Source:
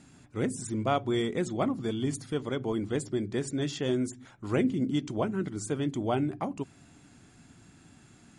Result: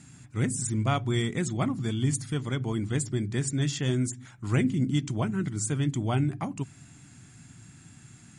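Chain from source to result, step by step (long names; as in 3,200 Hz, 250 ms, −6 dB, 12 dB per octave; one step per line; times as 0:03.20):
octave-band graphic EQ 125/500/2,000/8,000 Hz +10/−7/+4/+9 dB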